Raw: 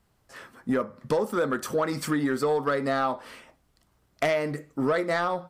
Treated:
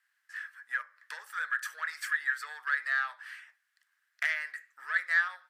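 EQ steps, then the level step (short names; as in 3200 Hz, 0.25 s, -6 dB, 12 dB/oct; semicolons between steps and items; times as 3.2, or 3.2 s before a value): ladder high-pass 1600 Hz, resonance 80%; +4.5 dB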